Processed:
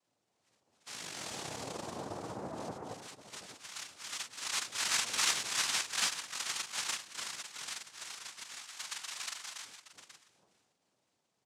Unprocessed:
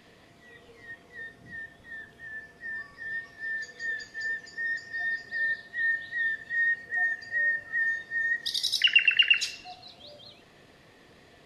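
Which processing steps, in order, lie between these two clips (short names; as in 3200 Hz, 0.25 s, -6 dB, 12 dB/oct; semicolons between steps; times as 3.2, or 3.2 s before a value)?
Doppler pass-by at 5.04, 11 m/s, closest 1.9 m; reverb removal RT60 0.56 s; tube stage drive 37 dB, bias 0.45; painted sound fall, 0.86–2.72, 240–1400 Hz -52 dBFS; doubler 44 ms -3 dB; on a send: tapped delay 0.283/0.313/0.821 s -4/-3.5/-12 dB; on the sum: noise vocoder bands 2; gain +5.5 dB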